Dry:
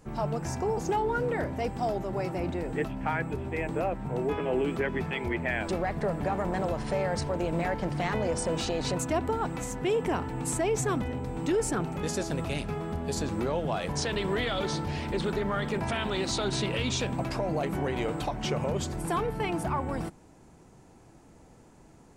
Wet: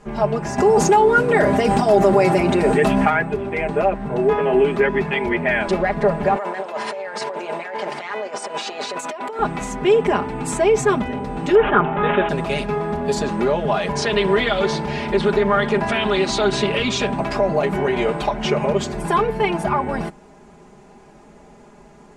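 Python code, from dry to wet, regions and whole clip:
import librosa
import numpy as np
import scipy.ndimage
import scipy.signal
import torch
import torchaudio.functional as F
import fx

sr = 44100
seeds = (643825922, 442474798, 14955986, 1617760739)

y = fx.chain(x, sr, fx.highpass(hz=63.0, slope=12),
    fx.peak_eq(hz=9600.0, db=10.0, octaves=1.2),
    fx.env_flatten(amount_pct=100), at=(0.58, 3.1))
y = fx.chain(y, sr, fx.highpass(hz=530.0, slope=12),
    fx.over_compress(threshold_db=-38.0, ratio=-1.0), at=(6.36, 9.39))
y = fx.chain(y, sr, fx.peak_eq(hz=1200.0, db=9.0, octaves=1.4),
    fx.resample_bad(factor=6, down='none', up='filtered'), at=(11.55, 12.29))
y = scipy.signal.sosfilt(scipy.signal.butter(2, 10000.0, 'lowpass', fs=sr, output='sos'), y)
y = fx.bass_treble(y, sr, bass_db=-6, treble_db=-7)
y = y + 0.93 * np.pad(y, (int(4.9 * sr / 1000.0), 0))[:len(y)]
y = y * librosa.db_to_amplitude(9.0)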